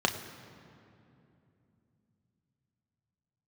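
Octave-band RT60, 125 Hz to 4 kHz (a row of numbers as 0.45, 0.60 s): 4.8, 4.3, 3.0, 2.5, 2.2, 1.6 s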